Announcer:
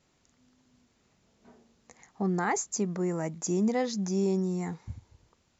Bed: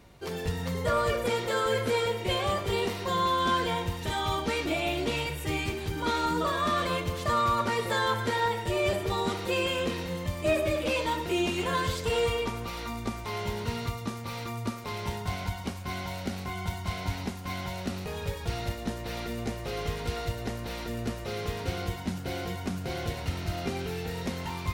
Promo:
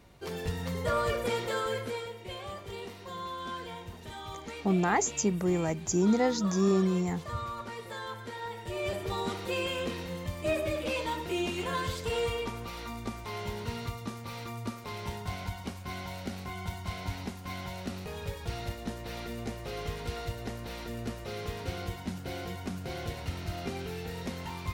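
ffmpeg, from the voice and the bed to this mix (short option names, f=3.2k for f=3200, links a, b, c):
-filter_complex "[0:a]adelay=2450,volume=2dB[a];[1:a]volume=6dB,afade=t=out:st=1.43:d=0.66:silence=0.316228,afade=t=in:st=8.41:d=0.73:silence=0.375837[b];[a][b]amix=inputs=2:normalize=0"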